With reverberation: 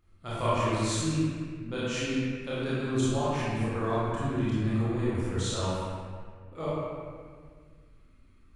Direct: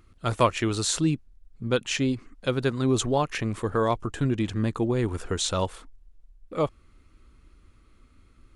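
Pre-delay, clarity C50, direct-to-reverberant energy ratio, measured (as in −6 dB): 26 ms, −5.0 dB, −11.0 dB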